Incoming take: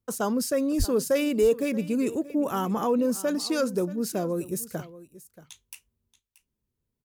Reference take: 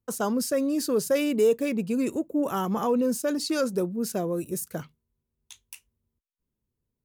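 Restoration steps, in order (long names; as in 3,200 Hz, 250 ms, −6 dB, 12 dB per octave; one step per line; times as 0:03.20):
high-pass at the plosives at 0:00.78
echo removal 630 ms −17.5 dB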